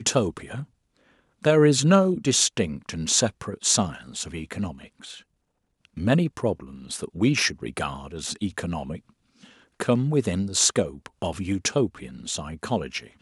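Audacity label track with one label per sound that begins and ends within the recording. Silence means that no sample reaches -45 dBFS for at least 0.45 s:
1.420000	5.220000	sound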